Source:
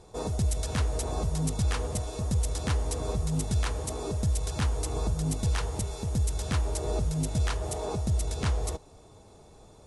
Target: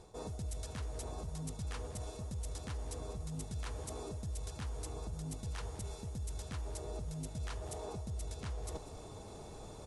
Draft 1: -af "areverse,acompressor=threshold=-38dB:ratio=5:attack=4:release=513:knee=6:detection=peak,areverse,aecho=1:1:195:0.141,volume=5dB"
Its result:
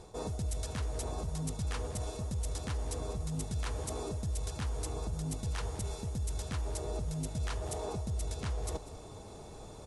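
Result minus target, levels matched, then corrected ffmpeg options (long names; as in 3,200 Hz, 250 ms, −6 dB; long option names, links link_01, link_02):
downward compressor: peak gain reduction −5.5 dB
-af "areverse,acompressor=threshold=-45dB:ratio=5:attack=4:release=513:knee=6:detection=peak,areverse,aecho=1:1:195:0.141,volume=5dB"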